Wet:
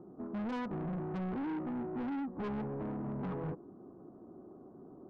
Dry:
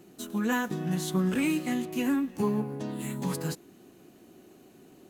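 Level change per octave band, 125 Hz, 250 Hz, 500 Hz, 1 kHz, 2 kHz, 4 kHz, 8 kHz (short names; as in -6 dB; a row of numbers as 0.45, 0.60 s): -7.5 dB, -8.5 dB, -7.0 dB, -6.0 dB, -14.5 dB, under -15 dB, under -35 dB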